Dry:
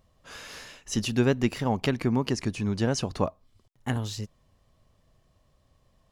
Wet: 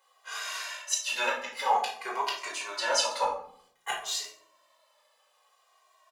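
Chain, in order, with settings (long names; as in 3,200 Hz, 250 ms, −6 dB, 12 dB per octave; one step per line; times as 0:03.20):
high-pass filter 730 Hz 24 dB per octave
notch filter 5,500 Hz, Q 28
gate with flip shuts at −19 dBFS, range −34 dB
convolution reverb RT60 0.60 s, pre-delay 5 ms, DRR −4.5 dB
barber-pole flanger 2 ms −0.55 Hz
level +4.5 dB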